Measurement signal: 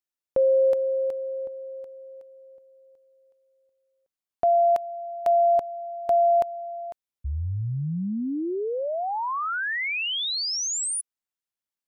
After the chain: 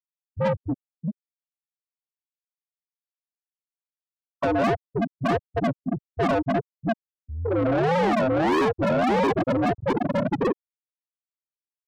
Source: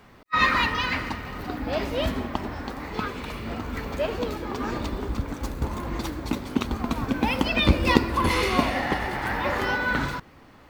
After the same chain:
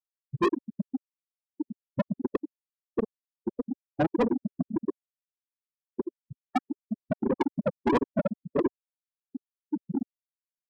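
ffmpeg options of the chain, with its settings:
-filter_complex "[0:a]asplit=2[s0][s1];[s1]adelay=226,lowpass=f=2400:p=1,volume=0.188,asplit=2[s2][s3];[s3]adelay=226,lowpass=f=2400:p=1,volume=0.22[s4];[s2][s4]amix=inputs=2:normalize=0[s5];[s0][s5]amix=inputs=2:normalize=0,dynaudnorm=f=170:g=31:m=5.96,aresample=11025,acrusher=samples=22:mix=1:aa=0.000001:lfo=1:lforange=13.2:lforate=1.6,aresample=44100,acompressor=threshold=0.158:ratio=20:attack=3.1:release=106:knee=6:detection=peak,highpass=f=590:p=1,afftfilt=real='re*gte(hypot(re,im),0.178)':imag='im*gte(hypot(re,im),0.178)':win_size=1024:overlap=0.75,lowpass=f=3100:p=1,aemphasis=mode=reproduction:type=50fm,afftdn=nr=23:nf=-54,asplit=2[s6][s7];[s7]highpass=f=720:p=1,volume=44.7,asoftclip=type=tanh:threshold=0.2[s8];[s6][s8]amix=inputs=2:normalize=0,lowpass=f=2400:p=1,volume=0.501"

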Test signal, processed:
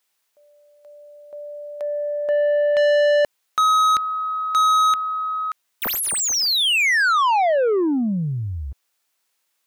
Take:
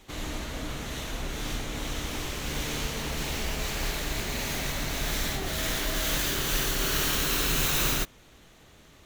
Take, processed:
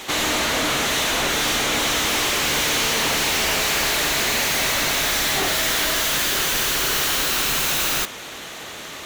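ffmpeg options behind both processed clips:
-filter_complex "[0:a]crystalizer=i=1:c=0,asplit=2[s0][s1];[s1]highpass=f=720:p=1,volume=39.8,asoftclip=type=tanh:threshold=0.398[s2];[s0][s2]amix=inputs=2:normalize=0,lowpass=f=4000:p=1,volume=0.501,volume=0.794"

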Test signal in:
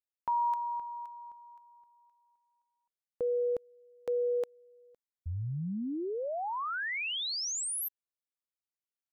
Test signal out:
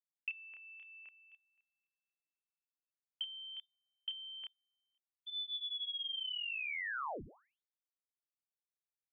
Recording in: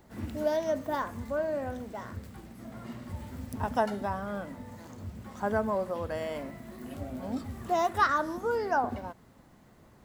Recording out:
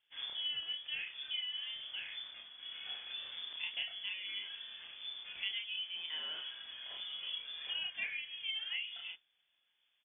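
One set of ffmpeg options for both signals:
-filter_complex "[0:a]aemphasis=mode=production:type=75kf,bandreject=f=60:t=h:w=6,bandreject=f=120:t=h:w=6,bandreject=f=180:t=h:w=6,agate=range=0.126:threshold=0.00631:ratio=3:release=93:detection=peak,lowshelf=f=140:g=-7,acompressor=threshold=0.0126:ratio=5:attack=35:release=535:knee=1:detection=peak,asoftclip=type=tanh:threshold=0.211,asplit=2[s0][s1];[s1]adelay=30,volume=0.794[s2];[s0][s2]amix=inputs=2:normalize=0,lowpass=f=3100:t=q:w=0.5098,lowpass=f=3100:t=q:w=0.6013,lowpass=f=3100:t=q:w=0.9,lowpass=f=3100:t=q:w=2.563,afreqshift=-3600,volume=0.668"

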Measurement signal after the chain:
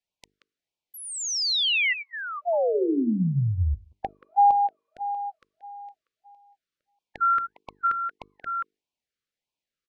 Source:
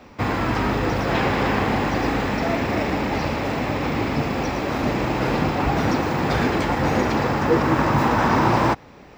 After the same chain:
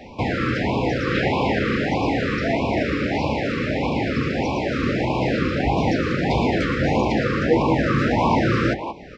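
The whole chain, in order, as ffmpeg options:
-filter_complex "[0:a]asplit=2[s0][s1];[s1]adelay=180,highpass=300,lowpass=3400,asoftclip=type=hard:threshold=0.168,volume=0.316[s2];[s0][s2]amix=inputs=2:normalize=0,asplit=2[s3][s4];[s4]acompressor=threshold=0.02:ratio=6,volume=1.19[s5];[s3][s5]amix=inputs=2:normalize=0,lowpass=4800,bandreject=f=50:t=h:w=6,bandreject=f=100:t=h:w=6,bandreject=f=150:t=h:w=6,bandreject=f=200:t=h:w=6,bandreject=f=250:t=h:w=6,bandreject=f=300:t=h:w=6,bandreject=f=350:t=h:w=6,bandreject=f=400:t=h:w=6,bandreject=f=450:t=h:w=6,afftfilt=real='re*(1-between(b*sr/1024,760*pow(1600/760,0.5+0.5*sin(2*PI*1.6*pts/sr))/1.41,760*pow(1600/760,0.5+0.5*sin(2*PI*1.6*pts/sr))*1.41))':imag='im*(1-between(b*sr/1024,760*pow(1600/760,0.5+0.5*sin(2*PI*1.6*pts/sr))/1.41,760*pow(1600/760,0.5+0.5*sin(2*PI*1.6*pts/sr))*1.41))':win_size=1024:overlap=0.75"

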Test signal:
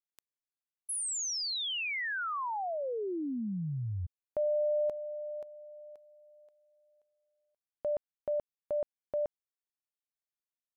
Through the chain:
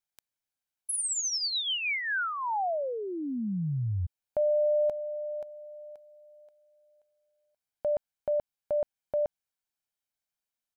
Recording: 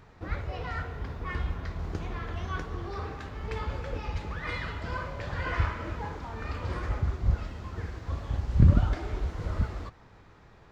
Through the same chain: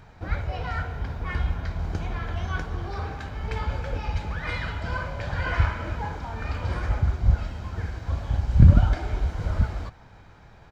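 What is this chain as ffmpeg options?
-af "aecho=1:1:1.3:0.34,volume=1.5"

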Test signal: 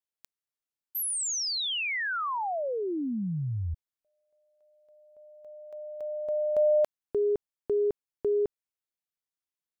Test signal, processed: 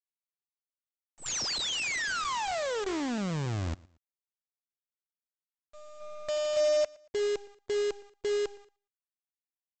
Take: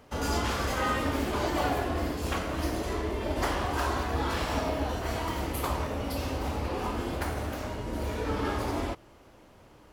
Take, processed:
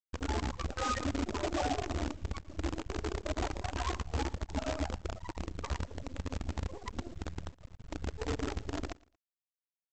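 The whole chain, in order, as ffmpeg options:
-af "afftfilt=real='re*gte(hypot(re,im),0.141)':imag='im*gte(hypot(re,im),0.141)':win_size=1024:overlap=0.75,bandreject=f=404.5:t=h:w=4,bandreject=f=809:t=h:w=4,bandreject=f=1213.5:t=h:w=4,bandreject=f=1618:t=h:w=4,aresample=16000,acrusher=bits=6:dc=4:mix=0:aa=0.000001,aresample=44100,aecho=1:1:115|230:0.0668|0.0207,volume=0.75"

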